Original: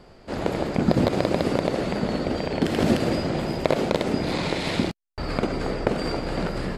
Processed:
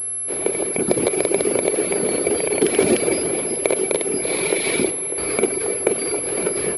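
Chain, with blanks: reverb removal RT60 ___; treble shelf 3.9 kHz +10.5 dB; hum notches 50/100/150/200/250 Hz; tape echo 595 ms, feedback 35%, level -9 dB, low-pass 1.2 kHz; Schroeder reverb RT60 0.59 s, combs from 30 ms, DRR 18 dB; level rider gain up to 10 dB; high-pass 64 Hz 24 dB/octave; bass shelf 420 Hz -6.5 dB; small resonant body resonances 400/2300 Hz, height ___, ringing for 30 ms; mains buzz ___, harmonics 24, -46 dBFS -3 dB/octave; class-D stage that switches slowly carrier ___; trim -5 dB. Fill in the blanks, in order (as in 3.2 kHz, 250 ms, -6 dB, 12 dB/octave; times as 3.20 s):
0.81 s, 16 dB, 120 Hz, 11 kHz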